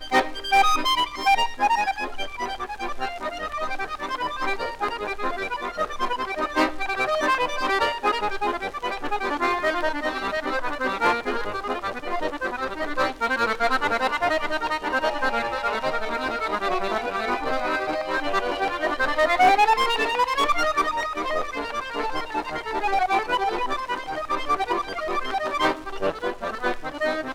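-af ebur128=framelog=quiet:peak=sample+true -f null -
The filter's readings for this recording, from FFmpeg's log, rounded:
Integrated loudness:
  I:         -24.4 LUFS
  Threshold: -34.4 LUFS
Loudness range:
  LRA:         5.4 LU
  Threshold: -44.6 LUFS
  LRA low:   -26.8 LUFS
  LRA high:  -21.4 LUFS
Sample peak:
  Peak:       -5.8 dBFS
True peak:
  Peak:       -5.8 dBFS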